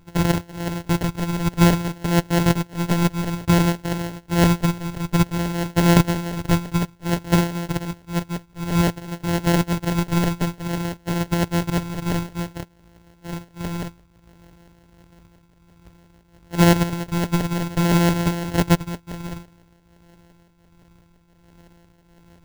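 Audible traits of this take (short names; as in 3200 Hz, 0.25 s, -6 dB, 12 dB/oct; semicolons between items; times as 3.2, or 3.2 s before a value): a buzz of ramps at a fixed pitch in blocks of 256 samples; tremolo triangle 1.4 Hz, depth 65%; phasing stages 4, 0.56 Hz, lowest notch 530–1600 Hz; aliases and images of a low sample rate 1200 Hz, jitter 0%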